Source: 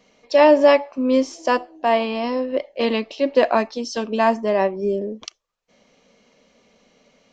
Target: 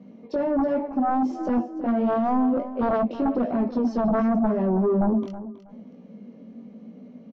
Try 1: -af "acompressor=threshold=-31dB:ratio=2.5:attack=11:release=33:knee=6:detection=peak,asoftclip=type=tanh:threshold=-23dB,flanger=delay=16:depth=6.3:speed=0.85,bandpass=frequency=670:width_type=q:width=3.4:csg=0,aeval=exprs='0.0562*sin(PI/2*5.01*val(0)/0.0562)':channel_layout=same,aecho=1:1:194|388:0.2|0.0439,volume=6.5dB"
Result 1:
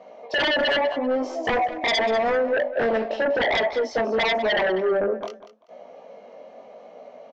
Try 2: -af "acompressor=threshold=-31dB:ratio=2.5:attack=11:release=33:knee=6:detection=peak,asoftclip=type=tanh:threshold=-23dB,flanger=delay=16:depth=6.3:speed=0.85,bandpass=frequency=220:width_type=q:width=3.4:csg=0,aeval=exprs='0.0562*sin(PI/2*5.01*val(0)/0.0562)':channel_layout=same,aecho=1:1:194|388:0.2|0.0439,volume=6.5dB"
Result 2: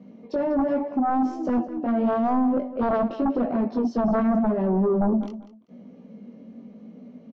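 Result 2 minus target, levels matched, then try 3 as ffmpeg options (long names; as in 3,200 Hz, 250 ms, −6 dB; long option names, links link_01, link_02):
echo 128 ms early
-af "acompressor=threshold=-31dB:ratio=2.5:attack=11:release=33:knee=6:detection=peak,asoftclip=type=tanh:threshold=-23dB,flanger=delay=16:depth=6.3:speed=0.85,bandpass=frequency=220:width_type=q:width=3.4:csg=0,aeval=exprs='0.0562*sin(PI/2*5.01*val(0)/0.0562)':channel_layout=same,aecho=1:1:322|644:0.2|0.0439,volume=6.5dB"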